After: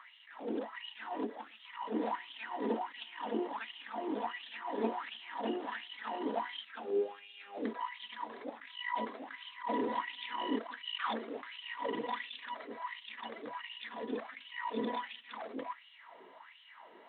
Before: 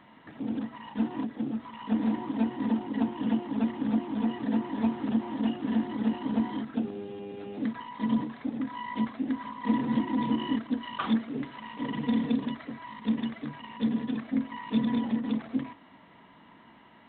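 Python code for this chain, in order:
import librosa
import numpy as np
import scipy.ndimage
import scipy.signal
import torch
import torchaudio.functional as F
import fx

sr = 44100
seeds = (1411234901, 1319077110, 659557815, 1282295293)

y = fx.filter_lfo_highpass(x, sr, shape='sine', hz=1.4, low_hz=390.0, high_hz=3100.0, q=5.2)
y = fx.attack_slew(y, sr, db_per_s=150.0)
y = y * librosa.db_to_amplitude(-3.5)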